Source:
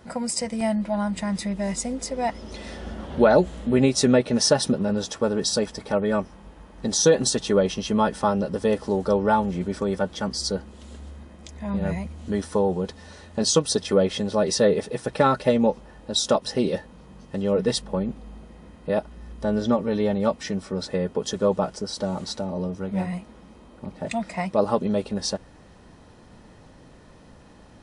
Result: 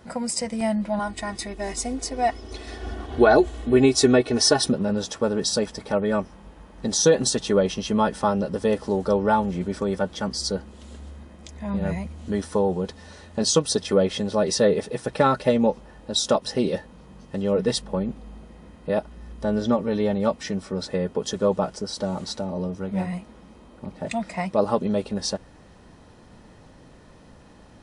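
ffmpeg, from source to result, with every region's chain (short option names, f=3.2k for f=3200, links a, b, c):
-filter_complex "[0:a]asettb=1/sr,asplit=3[a][b][c];[a]atrim=end=0.994[d];[b]atrim=start=0.99:end=4.69,asetpts=PTS-STARTPTS,afade=t=in:d=0.004:c=qsin,afade=t=out:st=3.696:d=0.004:c=qsin,aecho=1:1:2.7:0.82,atrim=end_sample=163170,acompressor=mode=upward:threshold=-32dB:ratio=2.5:attack=3.2:release=140:knee=2.83:detection=peak,agate=range=-33dB:threshold=-33dB:ratio=3:release=100:detection=peak[e];[c]atrim=start=4.686[f];[d][e]acrossfade=d=0.004:c1=hsin:c2=qsin[g];[g][f]acrossfade=d=0.004:c1=qsin:c2=hsin"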